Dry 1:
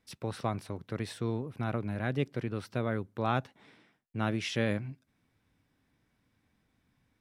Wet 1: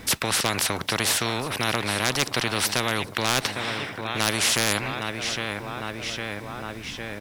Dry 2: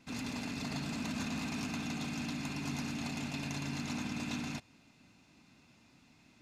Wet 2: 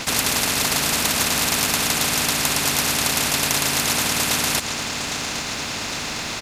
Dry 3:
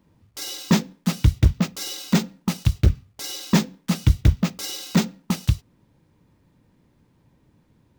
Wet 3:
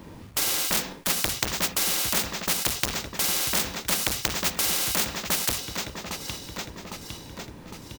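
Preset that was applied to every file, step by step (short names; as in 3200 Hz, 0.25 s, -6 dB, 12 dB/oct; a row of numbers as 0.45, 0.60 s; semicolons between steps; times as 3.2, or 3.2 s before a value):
feedback echo 0.807 s, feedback 51%, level -21 dB; overloaded stage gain 19.5 dB; spectral compressor 4:1; normalise peaks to -3 dBFS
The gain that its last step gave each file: +16.5, +21.5, +16.5 dB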